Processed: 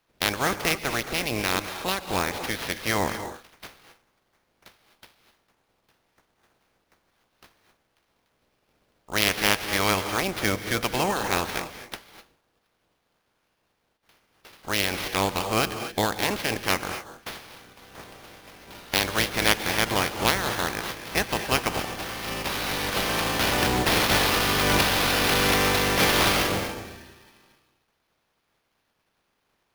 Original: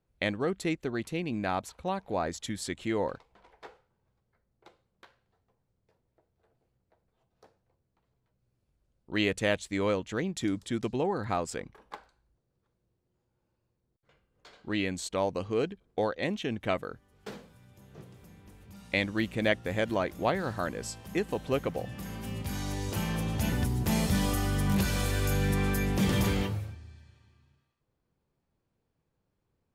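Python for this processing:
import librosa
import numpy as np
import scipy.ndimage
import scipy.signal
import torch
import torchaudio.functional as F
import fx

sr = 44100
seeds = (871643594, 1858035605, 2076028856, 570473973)

y = fx.spec_clip(x, sr, under_db=24)
y = fx.rev_gated(y, sr, seeds[0], gate_ms=280, shape='rising', drr_db=8.5)
y = fx.sample_hold(y, sr, seeds[1], rate_hz=7800.0, jitter_pct=20)
y = F.gain(torch.from_numpy(y), 5.0).numpy()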